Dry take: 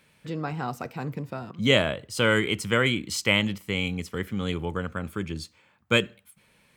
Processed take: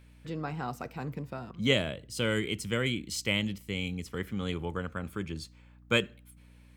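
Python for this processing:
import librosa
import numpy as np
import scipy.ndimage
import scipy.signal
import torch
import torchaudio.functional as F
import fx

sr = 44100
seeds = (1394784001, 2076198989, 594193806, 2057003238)

y = fx.peak_eq(x, sr, hz=1100.0, db=-8.0, octaves=1.8, at=(1.73, 4.06))
y = fx.add_hum(y, sr, base_hz=60, snr_db=22)
y = F.gain(torch.from_numpy(y), -4.5).numpy()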